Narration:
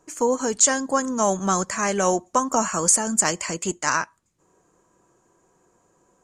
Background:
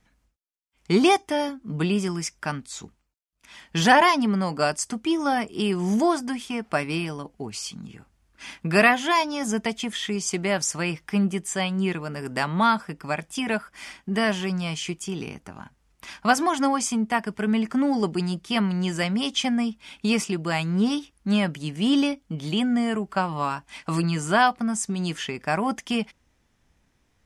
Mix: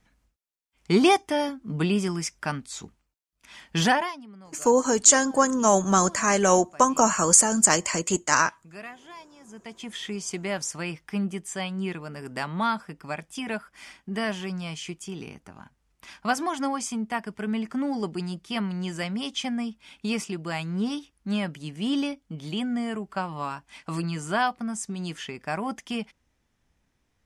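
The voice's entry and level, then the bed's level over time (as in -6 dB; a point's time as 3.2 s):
4.45 s, +1.5 dB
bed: 3.83 s -0.5 dB
4.26 s -23.5 dB
9.43 s -23.5 dB
9.94 s -5.5 dB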